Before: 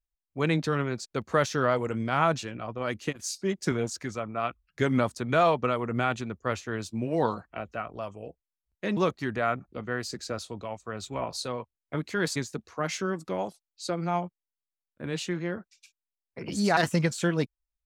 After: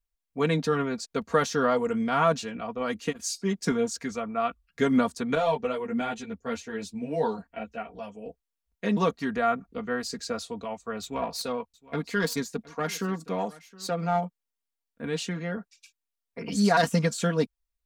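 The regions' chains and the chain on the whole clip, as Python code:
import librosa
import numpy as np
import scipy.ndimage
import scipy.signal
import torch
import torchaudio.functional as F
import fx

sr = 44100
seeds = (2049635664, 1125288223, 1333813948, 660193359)

y = fx.chain(x, sr, fx.peak_eq(hz=1200.0, db=-9.5, octaves=0.34),
    fx.ensemble(), at=(5.35, 8.26))
y = fx.chain(y, sr, fx.self_delay(depth_ms=0.096),
    fx.echo_single(ms=716, db=-21.0), at=(11.02, 14.25))
y = y + 0.76 * np.pad(y, (int(4.3 * sr / 1000.0), 0))[:len(y)]
y = fx.dynamic_eq(y, sr, hz=2300.0, q=1.8, threshold_db=-40.0, ratio=4.0, max_db=-4)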